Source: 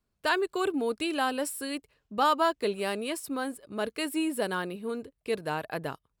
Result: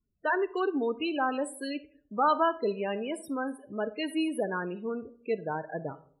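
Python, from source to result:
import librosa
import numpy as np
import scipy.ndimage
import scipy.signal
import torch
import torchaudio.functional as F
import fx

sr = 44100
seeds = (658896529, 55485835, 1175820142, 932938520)

y = fx.spec_topn(x, sr, count=16)
y = fx.rev_freeverb(y, sr, rt60_s=0.56, hf_ratio=0.35, predelay_ms=5, drr_db=15.0)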